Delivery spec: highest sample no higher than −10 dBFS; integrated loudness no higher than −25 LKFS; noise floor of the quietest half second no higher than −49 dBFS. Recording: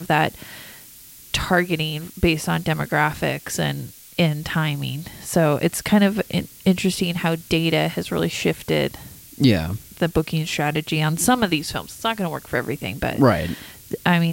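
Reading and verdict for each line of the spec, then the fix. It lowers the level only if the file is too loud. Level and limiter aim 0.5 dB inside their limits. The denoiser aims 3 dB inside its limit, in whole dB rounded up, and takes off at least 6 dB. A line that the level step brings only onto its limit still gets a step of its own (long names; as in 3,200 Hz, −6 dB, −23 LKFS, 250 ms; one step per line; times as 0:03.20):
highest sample −4.5 dBFS: out of spec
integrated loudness −21.5 LKFS: out of spec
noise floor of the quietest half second −44 dBFS: out of spec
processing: broadband denoise 6 dB, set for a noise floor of −44 dBFS
level −4 dB
brickwall limiter −10.5 dBFS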